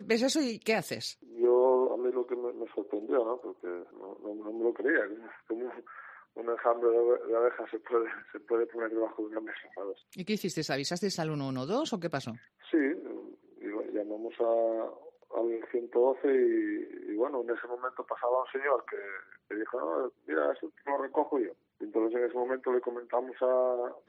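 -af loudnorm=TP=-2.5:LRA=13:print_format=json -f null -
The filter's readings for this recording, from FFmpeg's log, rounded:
"input_i" : "-31.8",
"input_tp" : "-12.9",
"input_lra" : "3.4",
"input_thresh" : "-42.1",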